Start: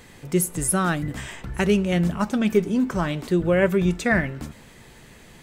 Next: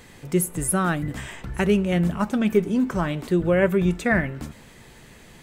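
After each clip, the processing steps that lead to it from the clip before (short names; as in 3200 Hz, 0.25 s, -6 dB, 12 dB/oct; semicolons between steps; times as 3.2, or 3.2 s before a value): dynamic EQ 5300 Hz, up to -7 dB, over -45 dBFS, Q 1.1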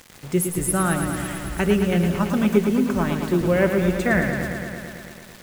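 bit-crush 7-bit; lo-fi delay 0.111 s, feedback 80%, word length 8-bit, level -7 dB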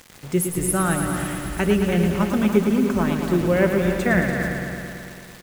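echo 0.289 s -9.5 dB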